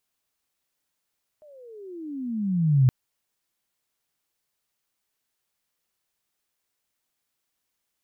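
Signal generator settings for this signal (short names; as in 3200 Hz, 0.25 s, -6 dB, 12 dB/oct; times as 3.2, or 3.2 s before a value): gliding synth tone sine, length 1.47 s, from 622 Hz, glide -28 st, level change +34.5 dB, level -13 dB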